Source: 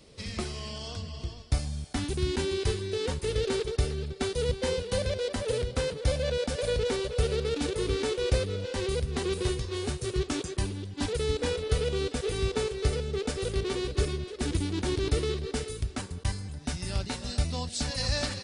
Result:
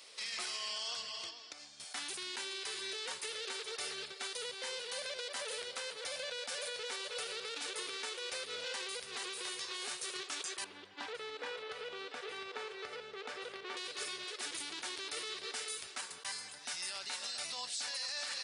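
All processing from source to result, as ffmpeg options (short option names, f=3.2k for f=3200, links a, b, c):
-filter_complex "[0:a]asettb=1/sr,asplit=3[a][b][c];[a]atrim=end=1.294[d];[b]atrim=start=1.29:end=1.8,asetpts=PTS-STARTPTS,afade=t=in:d=0.004:c=qsin,afade=t=out:st=0.506:d=0.004:c=qsin,lowpass=f=7.2k:w=0.5412,lowpass=f=7.2k:w=1.3066,acompressor=threshold=-44dB:ratio=4:attack=3.2:release=140:knee=1:detection=peak,equalizer=f=310:w=3.8:g=13[e];[c]atrim=start=1.796[f];[d][e]acrossfade=d=0.004:c1=hsin:c2=qsin[g];[g][f]acrossfade=d=0.004:c1=qsin:c2=hsin,asettb=1/sr,asplit=3[h][i][j];[h]atrim=end=10.644[k];[i]atrim=start=10.64:end=13.77,asetpts=PTS-STARTPTS,afade=t=in:d=0.004:c=qsin,afade=t=out:st=3.126:d=0.004:c=qsin,aemphasis=mode=reproduction:type=50kf,acompressor=threshold=-32dB:ratio=3:attack=3.2:release=140:knee=1:detection=peak,lowpass=f=2.2k:p=1[l];[j]atrim=start=13.766[m];[k][l]acrossfade=d=0.004:c1=hsin:c2=qsin[n];[n][m]acrossfade=d=0.004:c1=qsin:c2=hsin,highpass=1.1k,acompressor=threshold=-39dB:ratio=6,alimiter=level_in=11.5dB:limit=-24dB:level=0:latency=1:release=12,volume=-11.5dB,volume=5.5dB"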